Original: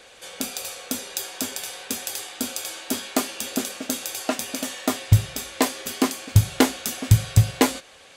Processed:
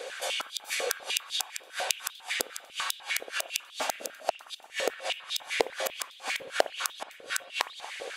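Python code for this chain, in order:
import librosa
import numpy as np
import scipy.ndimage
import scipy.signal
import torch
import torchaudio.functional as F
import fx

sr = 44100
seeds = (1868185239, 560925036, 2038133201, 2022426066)

y = fx.gate_flip(x, sr, shuts_db=-18.0, range_db=-36)
y = fx.rev_spring(y, sr, rt60_s=2.3, pass_ms=(58,), chirp_ms=75, drr_db=10.5)
y = fx.filter_held_highpass(y, sr, hz=10.0, low_hz=480.0, high_hz=3600.0)
y = y * 10.0 ** (4.5 / 20.0)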